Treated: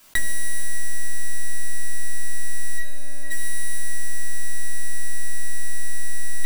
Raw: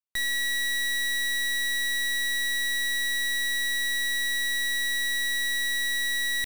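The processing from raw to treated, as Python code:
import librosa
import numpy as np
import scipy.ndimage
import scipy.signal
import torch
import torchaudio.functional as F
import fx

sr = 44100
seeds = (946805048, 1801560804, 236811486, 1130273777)

y = 10.0 ** (-31.5 / 20.0) * np.tanh(x / 10.0 ** (-31.5 / 20.0))
y = fx.bandpass_q(y, sr, hz=440.0, q=0.87, at=(2.77, 3.3), fade=0.02)
y = fx.echo_heads(y, sr, ms=149, heads='first and third', feedback_pct=58, wet_db=-14)
y = fx.room_shoebox(y, sr, seeds[0], volume_m3=340.0, walls='furnished', distance_m=3.0)
y = fx.env_flatten(y, sr, amount_pct=70)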